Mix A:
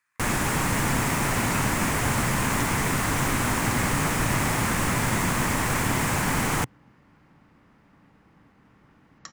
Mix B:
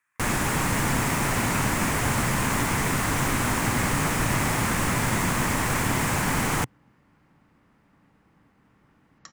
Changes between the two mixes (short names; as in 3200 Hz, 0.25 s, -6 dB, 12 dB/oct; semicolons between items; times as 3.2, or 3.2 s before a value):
speech: add Butterworth band-stop 4900 Hz, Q 1.3; second sound -4.0 dB